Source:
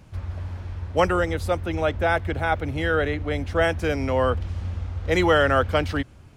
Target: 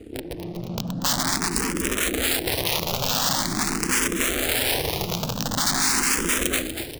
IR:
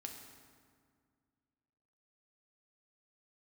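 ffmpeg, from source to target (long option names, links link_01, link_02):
-filter_complex "[0:a]bass=frequency=250:gain=14,treble=frequency=4000:gain=-2,bandreject=frequency=60:width_type=h:width=6,bandreject=frequency=120:width_type=h:width=6,bandreject=frequency=180:width_type=h:width=6,bandreject=frequency=240:width_type=h:width=6,bandreject=frequency=300:width_type=h:width=6,aecho=1:1:4.5:0.7,aeval=exprs='(mod(4.47*val(0)+1,2)-1)/4.47':channel_layout=same,aeval=exprs='0.224*(cos(1*acos(clip(val(0)/0.224,-1,1)))-cos(1*PI/2))+0.01*(cos(5*acos(clip(val(0)/0.224,-1,1)))-cos(5*PI/2))+0.0355*(cos(8*acos(clip(val(0)/0.224,-1,1)))-cos(8*PI/2))':channel_layout=same,acompressor=threshold=-26dB:ratio=3,highshelf=frequency=2500:gain=11,atempo=0.91,aeval=exprs='val(0)*sin(2*PI*260*n/s)':channel_layout=same,asplit=7[link_01][link_02][link_03][link_04][link_05][link_06][link_07];[link_02]adelay=239,afreqshift=-50,volume=-10dB[link_08];[link_03]adelay=478,afreqshift=-100,volume=-15.7dB[link_09];[link_04]adelay=717,afreqshift=-150,volume=-21.4dB[link_10];[link_05]adelay=956,afreqshift=-200,volume=-27dB[link_11];[link_06]adelay=1195,afreqshift=-250,volume=-32.7dB[link_12];[link_07]adelay=1434,afreqshift=-300,volume=-38.4dB[link_13];[link_01][link_08][link_09][link_10][link_11][link_12][link_13]amix=inputs=7:normalize=0,dynaudnorm=framelen=330:gausssize=3:maxgain=10.5dB,asplit=2[link_14][link_15];[link_15]afreqshift=0.45[link_16];[link_14][link_16]amix=inputs=2:normalize=1,volume=-1dB"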